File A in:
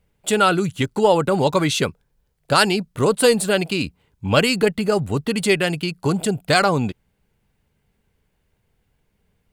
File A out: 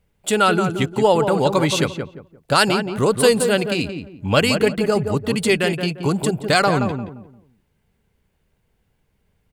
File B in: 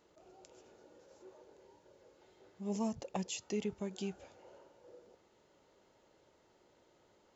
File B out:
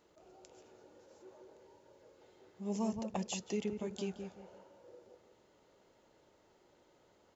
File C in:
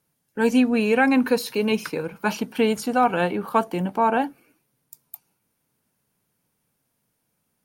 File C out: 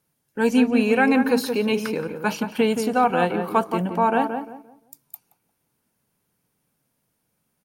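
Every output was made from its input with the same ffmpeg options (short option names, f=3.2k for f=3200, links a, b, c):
-filter_complex "[0:a]asplit=2[a][b];[b]adelay=174,lowpass=f=1.3k:p=1,volume=-6dB,asplit=2[c][d];[d]adelay=174,lowpass=f=1.3k:p=1,volume=0.3,asplit=2[e][f];[f]adelay=174,lowpass=f=1.3k:p=1,volume=0.3,asplit=2[g][h];[h]adelay=174,lowpass=f=1.3k:p=1,volume=0.3[i];[a][c][e][g][i]amix=inputs=5:normalize=0"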